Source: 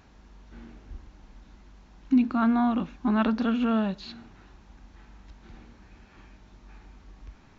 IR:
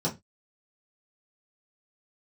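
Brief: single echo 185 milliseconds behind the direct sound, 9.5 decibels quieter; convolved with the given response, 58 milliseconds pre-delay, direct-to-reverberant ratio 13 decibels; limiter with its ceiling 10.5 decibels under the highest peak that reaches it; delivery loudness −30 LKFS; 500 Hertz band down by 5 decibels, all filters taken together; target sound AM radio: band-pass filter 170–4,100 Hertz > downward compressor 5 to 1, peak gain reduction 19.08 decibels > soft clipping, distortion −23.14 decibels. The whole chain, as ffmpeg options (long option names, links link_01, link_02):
-filter_complex "[0:a]equalizer=frequency=500:width_type=o:gain=-7,alimiter=limit=-23.5dB:level=0:latency=1,aecho=1:1:185:0.335,asplit=2[link_01][link_02];[1:a]atrim=start_sample=2205,adelay=58[link_03];[link_02][link_03]afir=irnorm=-1:irlink=0,volume=-21dB[link_04];[link_01][link_04]amix=inputs=2:normalize=0,highpass=170,lowpass=4100,acompressor=threshold=-46dB:ratio=5,asoftclip=threshold=-38dB,volume=22dB"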